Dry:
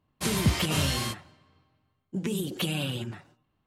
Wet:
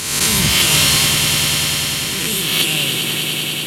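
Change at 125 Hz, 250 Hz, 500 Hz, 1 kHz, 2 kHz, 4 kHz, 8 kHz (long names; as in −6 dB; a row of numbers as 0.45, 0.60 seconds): +7.0, +6.5, +7.5, +12.0, +18.0, +20.0, +21.5 decibels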